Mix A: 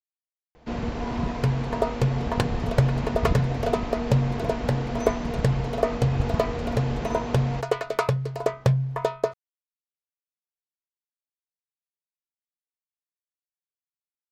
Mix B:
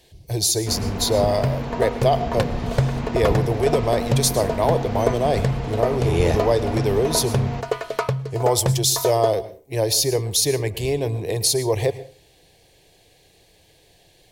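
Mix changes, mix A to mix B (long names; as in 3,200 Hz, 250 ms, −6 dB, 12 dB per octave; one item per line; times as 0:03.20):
speech: unmuted
reverb: on, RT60 0.35 s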